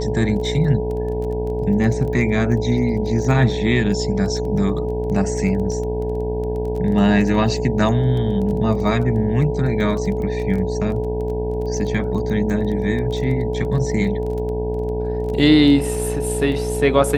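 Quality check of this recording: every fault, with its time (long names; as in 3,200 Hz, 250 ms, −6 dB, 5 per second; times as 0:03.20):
mains buzz 60 Hz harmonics 16 −25 dBFS
surface crackle 17 per second −27 dBFS
whistle 430 Hz −23 dBFS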